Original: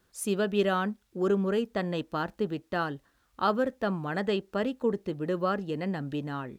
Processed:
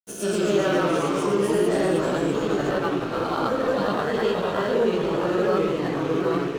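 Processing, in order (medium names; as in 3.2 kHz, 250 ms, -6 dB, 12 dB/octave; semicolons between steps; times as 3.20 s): reverse spectral sustain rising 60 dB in 1.03 s; graphic EQ with 31 bands 500 Hz +7 dB, 2.5 kHz -5 dB, 6.3 kHz +9 dB; on a send: repeats whose band climbs or falls 447 ms, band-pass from 3.9 kHz, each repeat 0.7 oct, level -4 dB; on the sum: granulator, pitch spread up and down by 0 st; chorus voices 6, 0.71 Hz, delay 16 ms, depth 1.9 ms; ever faster or slower copies 111 ms, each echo -2 st, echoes 3; reverberation, pre-delay 60 ms, DRR 8 dB; in parallel at -1 dB: peak limiter -20.5 dBFS, peak gain reduction 8 dB; on the sum: crossover distortion -40.5 dBFS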